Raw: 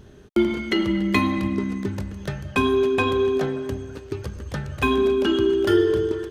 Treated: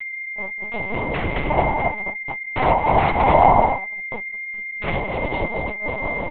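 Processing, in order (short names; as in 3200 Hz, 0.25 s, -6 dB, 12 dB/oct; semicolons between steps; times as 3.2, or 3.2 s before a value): opening faded in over 1.63 s; comb 3 ms, depth 35%; echo 0.212 s -3.5 dB; negative-ratio compressor -19 dBFS, ratio -0.5; dynamic EQ 1400 Hz, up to -4 dB, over -41 dBFS, Q 1.4; noise vocoder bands 4; gate -26 dBFS, range -35 dB; 1.5–3.96 bell 860 Hz +13 dB 1.1 oct; whine 2100 Hz -24 dBFS; LPC vocoder at 8 kHz pitch kept; gain -3.5 dB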